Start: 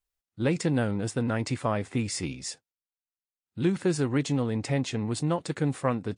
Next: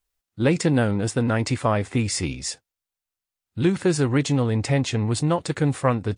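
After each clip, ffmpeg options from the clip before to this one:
ffmpeg -i in.wav -af "asubboost=boost=4:cutoff=88,volume=6.5dB" out.wav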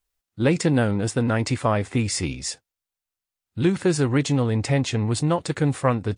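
ffmpeg -i in.wav -af anull out.wav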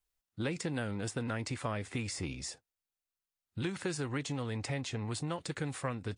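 ffmpeg -i in.wav -filter_complex "[0:a]acrossover=split=610|1300[link_01][link_02][link_03];[link_01]acompressor=threshold=-30dB:ratio=4[link_04];[link_02]acompressor=threshold=-41dB:ratio=4[link_05];[link_03]acompressor=threshold=-34dB:ratio=4[link_06];[link_04][link_05][link_06]amix=inputs=3:normalize=0,volume=-6dB" out.wav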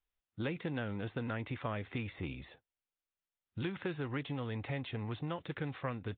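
ffmpeg -i in.wav -af "aresample=8000,aresample=44100,volume=-2dB" out.wav

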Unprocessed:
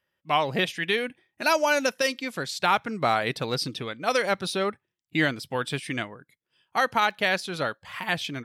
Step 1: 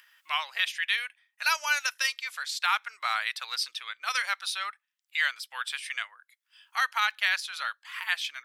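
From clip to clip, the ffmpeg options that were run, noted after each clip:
ffmpeg -i in.wav -af "highpass=frequency=1200:width=0.5412,highpass=frequency=1200:width=1.3066,acompressor=mode=upward:threshold=-44dB:ratio=2.5" out.wav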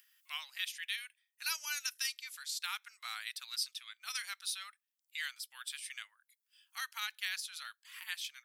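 ffmpeg -i in.wav -af "aderivative,volume=-2.5dB" out.wav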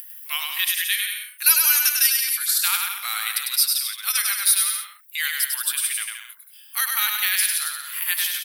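ffmpeg -i in.wav -af "aexciter=amount=6.2:drive=5.8:freq=9600,acontrast=84,aecho=1:1:100|175|231.2|273.4|305.1:0.631|0.398|0.251|0.158|0.1,volume=6dB" out.wav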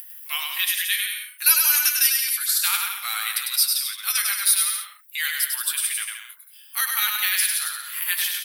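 ffmpeg -i in.wav -af "flanger=delay=8.7:depth=2.6:regen=-45:speed=0.41:shape=sinusoidal,volume=3.5dB" out.wav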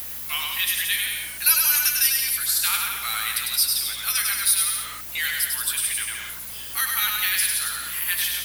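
ffmpeg -i in.wav -af "aeval=exprs='val(0)+0.5*0.0376*sgn(val(0))':channel_layout=same,aeval=exprs='val(0)+0.00355*(sin(2*PI*60*n/s)+sin(2*PI*2*60*n/s)/2+sin(2*PI*3*60*n/s)/3+sin(2*PI*4*60*n/s)/4+sin(2*PI*5*60*n/s)/5)':channel_layout=same,volume=-2dB" out.wav

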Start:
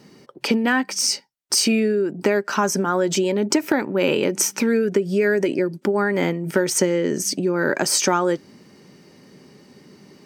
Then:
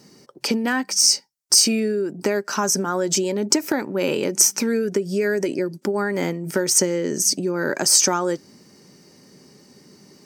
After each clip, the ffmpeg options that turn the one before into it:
ffmpeg -i in.wav -af "highshelf=frequency=4200:width_type=q:width=1.5:gain=6.5,volume=-2.5dB" out.wav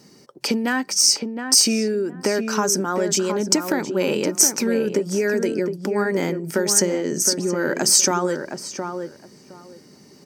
ffmpeg -i in.wav -filter_complex "[0:a]asplit=2[link_01][link_02];[link_02]adelay=715,lowpass=frequency=1500:poles=1,volume=-6dB,asplit=2[link_03][link_04];[link_04]adelay=715,lowpass=frequency=1500:poles=1,volume=0.19,asplit=2[link_05][link_06];[link_06]adelay=715,lowpass=frequency=1500:poles=1,volume=0.19[link_07];[link_01][link_03][link_05][link_07]amix=inputs=4:normalize=0" out.wav

